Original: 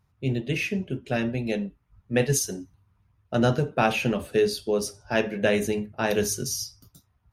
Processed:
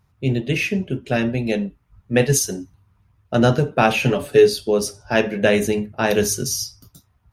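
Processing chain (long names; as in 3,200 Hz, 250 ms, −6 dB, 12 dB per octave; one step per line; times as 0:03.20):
0:04.03–0:04.49: comb filter 7 ms, depth 60%
level +6 dB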